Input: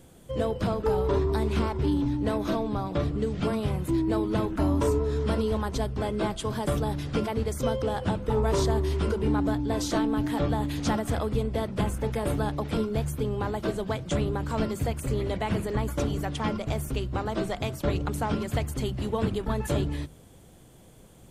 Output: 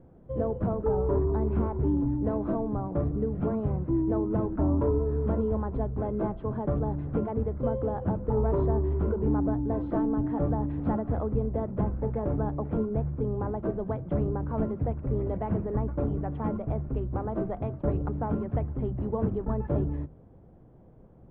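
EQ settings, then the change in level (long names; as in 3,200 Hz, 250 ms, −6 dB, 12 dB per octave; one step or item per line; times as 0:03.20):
low-pass filter 1,000 Hz 12 dB per octave
high-frequency loss of the air 430 metres
0.0 dB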